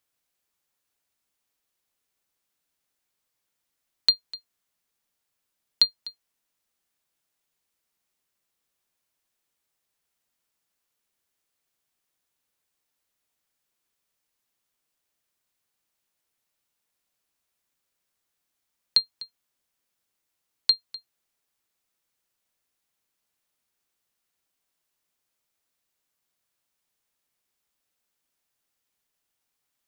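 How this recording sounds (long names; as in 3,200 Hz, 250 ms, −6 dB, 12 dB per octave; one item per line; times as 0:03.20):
background noise floor −81 dBFS
spectral slope −0.5 dB per octave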